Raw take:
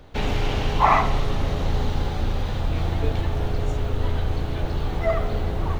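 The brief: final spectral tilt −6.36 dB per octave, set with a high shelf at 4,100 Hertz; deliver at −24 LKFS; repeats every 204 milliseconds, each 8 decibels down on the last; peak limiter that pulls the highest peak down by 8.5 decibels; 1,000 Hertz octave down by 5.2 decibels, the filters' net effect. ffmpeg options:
ffmpeg -i in.wav -af "equalizer=frequency=1000:width_type=o:gain=-6,highshelf=frequency=4100:gain=-8,alimiter=limit=-16.5dB:level=0:latency=1,aecho=1:1:204|408|612|816|1020:0.398|0.159|0.0637|0.0255|0.0102,volume=3dB" out.wav

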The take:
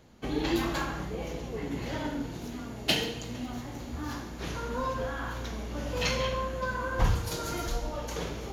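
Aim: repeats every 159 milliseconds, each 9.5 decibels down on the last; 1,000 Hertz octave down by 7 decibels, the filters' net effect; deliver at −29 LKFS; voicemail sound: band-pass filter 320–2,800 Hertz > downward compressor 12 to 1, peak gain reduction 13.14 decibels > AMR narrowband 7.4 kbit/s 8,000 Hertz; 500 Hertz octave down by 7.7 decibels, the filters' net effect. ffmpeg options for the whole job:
ffmpeg -i in.wav -af "highpass=320,lowpass=2800,equalizer=frequency=500:width_type=o:gain=-6.5,equalizer=frequency=1000:width_type=o:gain=-6.5,aecho=1:1:159|318|477|636:0.335|0.111|0.0365|0.012,acompressor=threshold=-39dB:ratio=12,volume=17dB" -ar 8000 -c:a libopencore_amrnb -b:a 7400 out.amr

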